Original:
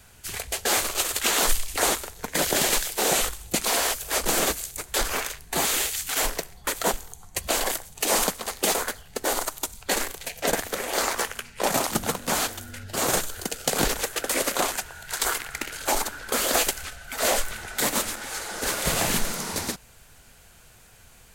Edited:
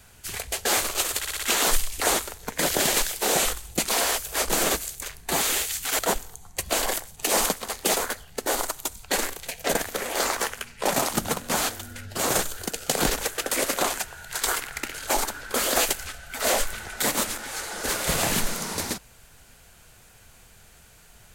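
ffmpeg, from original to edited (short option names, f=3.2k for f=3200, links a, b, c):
-filter_complex "[0:a]asplit=7[a][b][c][d][e][f][g];[a]atrim=end=1.242[h];[b]atrim=start=1.178:end=1.242[i];[c]atrim=start=1.178:end=1.242[j];[d]atrim=start=1.178:end=1.242[k];[e]atrim=start=1.178:end=4.792[l];[f]atrim=start=5.268:end=6.232[m];[g]atrim=start=6.768[n];[h][i]acrossfade=d=0.004:c1=hsin:c2=hsin[o];[o][j]acrossfade=d=0.004:c1=hsin:c2=hsin[p];[p][k]acrossfade=d=0.004:c1=hsin:c2=hsin[q];[q][l]acrossfade=d=0.004:c1=hsin:c2=hsin[r];[r][m]acrossfade=d=0.004:c1=hsin:c2=hsin[s];[s][n]acrossfade=d=0.004:c1=hsin:c2=hsin"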